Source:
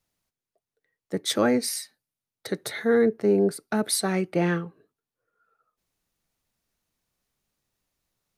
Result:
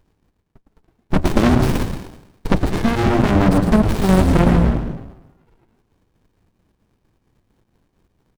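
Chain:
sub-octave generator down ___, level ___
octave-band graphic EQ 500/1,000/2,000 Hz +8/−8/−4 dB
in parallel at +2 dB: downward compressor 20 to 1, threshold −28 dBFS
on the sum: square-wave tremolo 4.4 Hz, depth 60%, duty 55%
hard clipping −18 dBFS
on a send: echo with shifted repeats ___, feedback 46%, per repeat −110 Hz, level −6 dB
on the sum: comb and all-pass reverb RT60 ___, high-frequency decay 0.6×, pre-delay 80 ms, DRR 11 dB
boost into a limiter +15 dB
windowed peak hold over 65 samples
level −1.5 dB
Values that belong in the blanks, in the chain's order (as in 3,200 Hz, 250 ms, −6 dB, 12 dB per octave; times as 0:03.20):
2 octaves, −6 dB, 109 ms, 0.75 s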